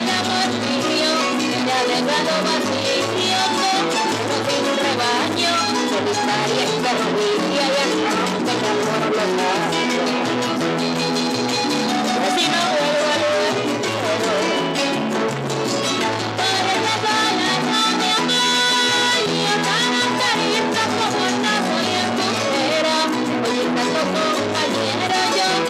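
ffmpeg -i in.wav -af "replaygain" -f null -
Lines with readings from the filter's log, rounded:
track_gain = -1.1 dB
track_peak = 0.274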